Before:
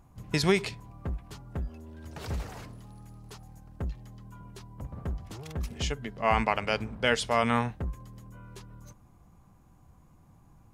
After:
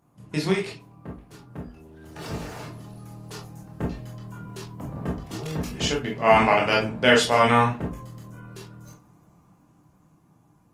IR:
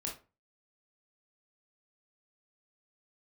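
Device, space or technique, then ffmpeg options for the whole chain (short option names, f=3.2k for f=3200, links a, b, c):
far-field microphone of a smart speaker: -filter_complex "[1:a]atrim=start_sample=2205[a];[0:a][a]afir=irnorm=-1:irlink=0,highpass=150,dynaudnorm=f=440:g=11:m=12dB" -ar 48000 -c:a libopus -b:a 24k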